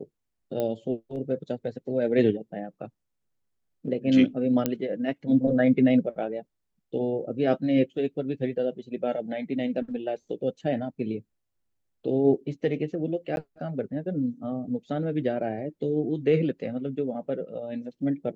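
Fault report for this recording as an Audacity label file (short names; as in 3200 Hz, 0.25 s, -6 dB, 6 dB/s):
0.600000	0.600000	pop -17 dBFS
4.660000	4.660000	pop -10 dBFS
13.360000	13.370000	gap 11 ms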